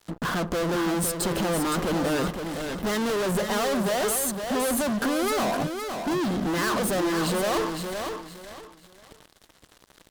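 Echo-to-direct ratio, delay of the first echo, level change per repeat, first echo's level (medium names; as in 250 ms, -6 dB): -6.0 dB, 514 ms, -11.5 dB, -6.5 dB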